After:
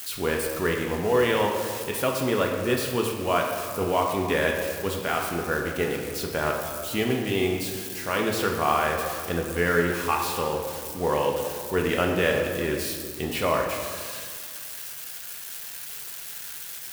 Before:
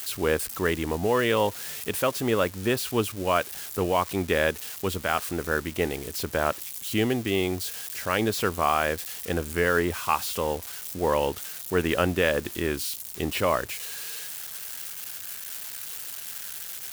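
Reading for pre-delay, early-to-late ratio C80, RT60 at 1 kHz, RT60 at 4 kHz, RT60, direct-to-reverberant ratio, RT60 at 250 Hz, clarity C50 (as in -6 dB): 3 ms, 5.0 dB, 2.0 s, 1.2 s, 2.0 s, 0.0 dB, 2.1 s, 3.5 dB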